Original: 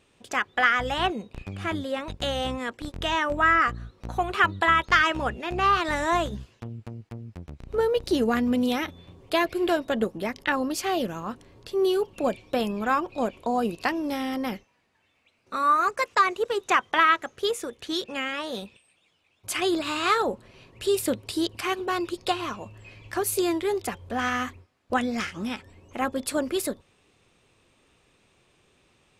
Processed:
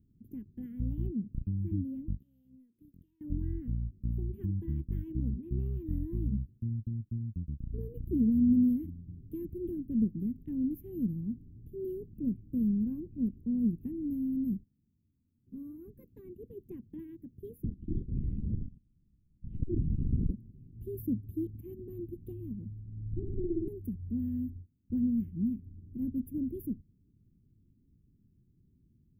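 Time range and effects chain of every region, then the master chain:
0:02.19–0:03.21: high-pass filter 1,400 Hz 6 dB per octave + downward compressor 12 to 1, threshold −43 dBFS
0:17.64–0:20.31: low-shelf EQ 170 Hz +12 dB + linear-prediction vocoder at 8 kHz whisper + saturating transformer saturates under 400 Hz
0:22.82–0:23.68: lower of the sound and its delayed copy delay 0.36 ms + low-pass filter 1,100 Hz + flutter between parallel walls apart 9.5 metres, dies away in 1.2 s
whole clip: inverse Chebyshev band-stop filter 620–8,600 Hz, stop band 50 dB; low-shelf EQ 340 Hz +4.5 dB

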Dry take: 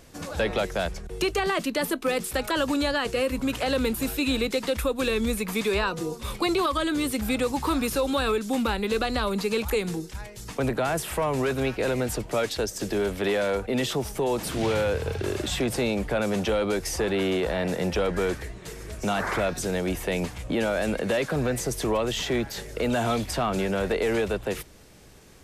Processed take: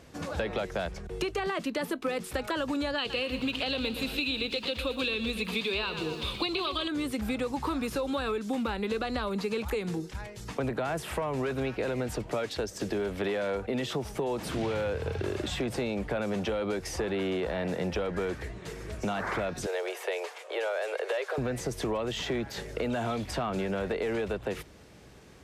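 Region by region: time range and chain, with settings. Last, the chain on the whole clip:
0:02.98–0:06.88: flat-topped bell 3,400 Hz +12 dB 1.1 octaves + feedback echo at a low word length 117 ms, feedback 55%, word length 7 bits, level −11 dB
0:19.66–0:21.38: Butterworth high-pass 390 Hz 72 dB per octave + floating-point word with a short mantissa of 8 bits
whole clip: downward compressor 4 to 1, threshold −28 dBFS; high-pass filter 51 Hz; high-shelf EQ 6,600 Hz −12 dB

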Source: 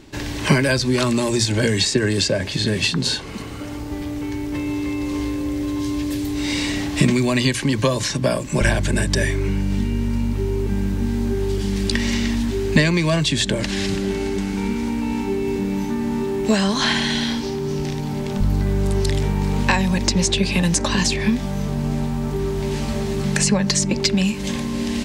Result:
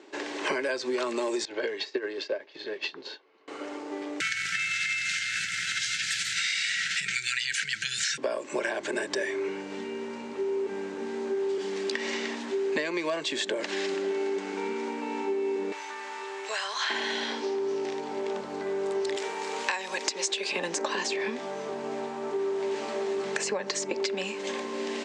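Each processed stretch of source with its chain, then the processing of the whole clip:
0:01.45–0:03.48: low-pass filter 5,000 Hz 24 dB per octave + parametric band 210 Hz −6.5 dB 0.61 octaves + expander for the loud parts 2.5 to 1, over −32 dBFS
0:04.20–0:08.18: linear-phase brick-wall band-stop 190–1,300 Hz + high-shelf EQ 5,500 Hz +4.5 dB + envelope flattener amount 100%
0:15.72–0:16.90: high-pass filter 1,200 Hz + upward compression, threshold −27 dBFS
0:19.16–0:20.52: high-pass filter 170 Hz + spectral tilt +3 dB per octave
whole clip: Chebyshev band-pass filter 380–7,700 Hz, order 3; high-shelf EQ 2,600 Hz −10 dB; downward compressor, threshold −26 dBFS

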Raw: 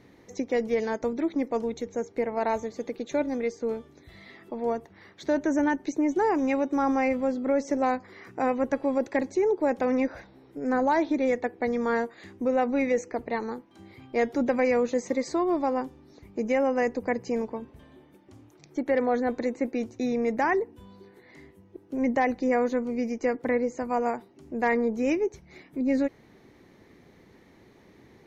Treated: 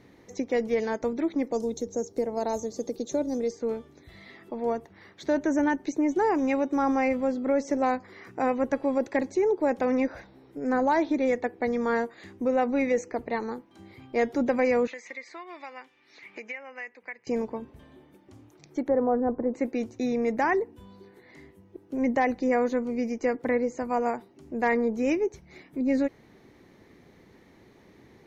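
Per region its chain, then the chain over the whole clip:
0:01.52–0:03.51: drawn EQ curve 540 Hz 0 dB, 2,300 Hz −14 dB, 5,600 Hz +8 dB + multiband upward and downward compressor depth 40%
0:14.87–0:17.27: resonant band-pass 2,200 Hz, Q 2.7 + multiband upward and downward compressor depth 100%
0:18.88–0:19.54: low-pass filter 1,200 Hz 24 dB per octave + low-shelf EQ 140 Hz +5.5 dB
whole clip: no processing

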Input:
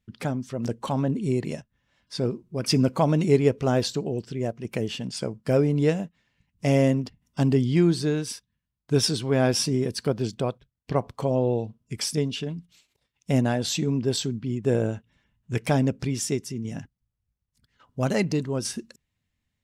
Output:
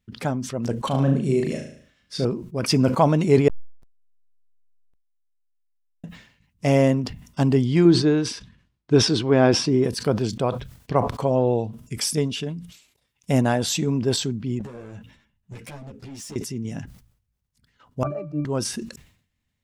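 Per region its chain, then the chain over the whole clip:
0:00.87–0:02.25: parametric band 900 Hz −13 dB 0.33 octaves + flutter between parallel walls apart 6.3 metres, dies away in 0.46 s
0:03.48–0:06.04: inverse Chebyshev band-stop filter 240–2,600 Hz, stop band 80 dB + volume swells 163 ms + slack as between gear wheels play −43.5 dBFS
0:07.85–0:09.84: low-pass filter 4,900 Hz + parametric band 330 Hz +6.5 dB 0.63 octaves + floating-point word with a short mantissa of 8 bits
0:11.47–0:14.05: parametric band 11,000 Hz +5 dB 1.1 octaves + notch filter 4,200 Hz, Q 28
0:14.59–0:16.36: downward compressor, threshold −30 dBFS + hard clipping −33 dBFS + string-ensemble chorus
0:18.03–0:18.45: spike at every zero crossing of −24 dBFS + flat-topped bell 740 Hz +9 dB 2.5 octaves + resonances in every octave D, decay 0.29 s
whole clip: dynamic equaliser 1,000 Hz, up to +5 dB, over −37 dBFS, Q 0.98; level that may fall only so fast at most 98 dB per second; level +1.5 dB

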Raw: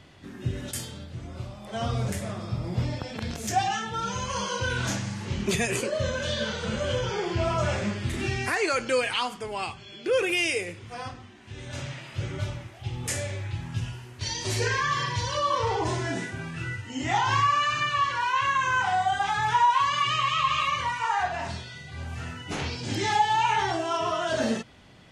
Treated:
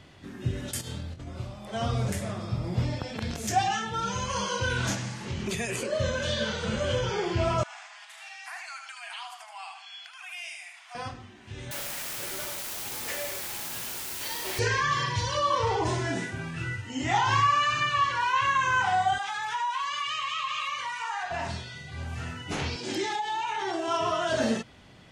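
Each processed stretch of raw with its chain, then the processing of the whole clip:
0:00.81–0:01.29: compressor whose output falls as the input rises −40 dBFS, ratio −0.5 + flutter between parallel walls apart 4.2 metres, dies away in 0.21 s
0:04.94–0:05.90: mains-hum notches 50/100/150/200/250/300/350/400 Hz + downward compressor 3 to 1, threshold −28 dBFS
0:07.63–0:10.95: downward compressor 4 to 1, threshold −38 dBFS + linear-phase brick-wall high-pass 640 Hz + repeating echo 76 ms, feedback 31%, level −6 dB
0:11.71–0:14.59: band-pass filter 440–3,200 Hz + bit-depth reduction 6 bits, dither triangular
0:19.18–0:21.31: high-pass filter 1,300 Hz 6 dB per octave + downward compressor 2 to 1, threshold −30 dBFS
0:22.76–0:23.88: high-pass filter 260 Hz + downward compressor 5 to 1, threshold −28 dBFS + hollow resonant body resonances 360/3,700 Hz, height 12 dB, ringing for 90 ms
whole clip: no processing

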